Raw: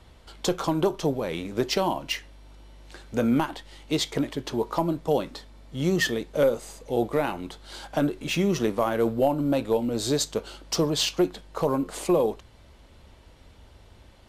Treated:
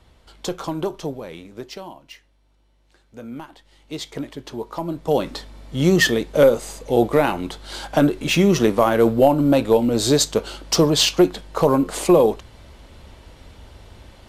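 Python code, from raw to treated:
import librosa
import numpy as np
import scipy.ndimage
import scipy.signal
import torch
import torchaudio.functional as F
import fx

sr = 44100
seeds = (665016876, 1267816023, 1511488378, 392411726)

y = fx.gain(x, sr, db=fx.line((0.96, -1.5), (1.99, -13.0), (3.21, -13.0), (4.2, -3.0), (4.78, -3.0), (5.3, 8.0)))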